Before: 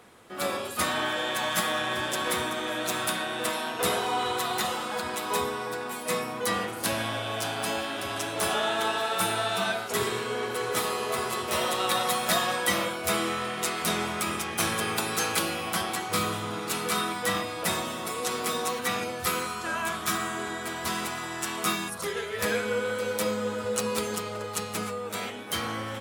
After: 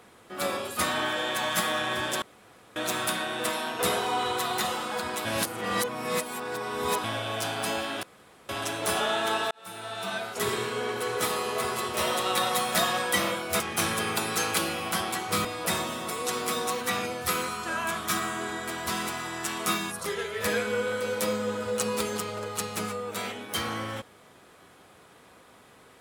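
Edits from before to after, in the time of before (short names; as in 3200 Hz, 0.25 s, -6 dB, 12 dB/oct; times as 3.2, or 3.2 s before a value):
2.22–2.76 room tone
5.25–7.04 reverse
8.03 insert room tone 0.46 s
9.05–10.1 fade in
13.14–14.41 cut
16.26–17.43 cut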